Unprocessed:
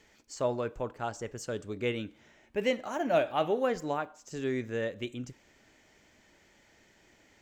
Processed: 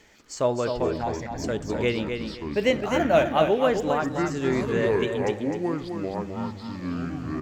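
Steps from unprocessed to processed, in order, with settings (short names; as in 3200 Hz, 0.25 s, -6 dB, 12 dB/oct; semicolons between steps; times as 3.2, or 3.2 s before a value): echoes that change speed 0.192 s, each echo -7 st, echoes 2, each echo -6 dB; 1.01–1.44 fixed phaser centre 2000 Hz, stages 8; feedback echo 0.258 s, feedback 23%, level -6.5 dB; gain +6.5 dB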